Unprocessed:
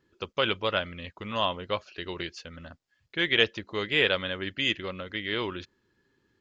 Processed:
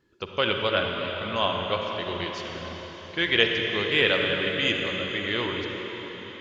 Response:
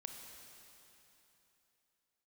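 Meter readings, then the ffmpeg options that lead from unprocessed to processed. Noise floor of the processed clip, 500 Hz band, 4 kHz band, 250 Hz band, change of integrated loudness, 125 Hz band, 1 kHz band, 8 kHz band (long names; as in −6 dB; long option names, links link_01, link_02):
−43 dBFS, +4.0 dB, +3.5 dB, +3.5 dB, +3.0 dB, +4.0 dB, +3.5 dB, can't be measured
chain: -filter_complex "[1:a]atrim=start_sample=2205,asetrate=27783,aresample=44100[link_01];[0:a][link_01]afir=irnorm=-1:irlink=0,volume=4.5dB"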